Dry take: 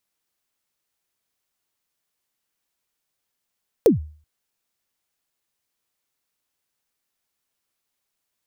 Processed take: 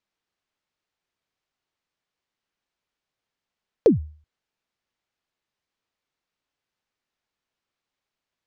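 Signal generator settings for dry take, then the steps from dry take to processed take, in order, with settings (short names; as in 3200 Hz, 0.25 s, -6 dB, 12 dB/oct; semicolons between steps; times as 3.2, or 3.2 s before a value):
kick drum length 0.38 s, from 520 Hz, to 76 Hz, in 0.133 s, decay 0.43 s, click on, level -7 dB
air absorption 130 m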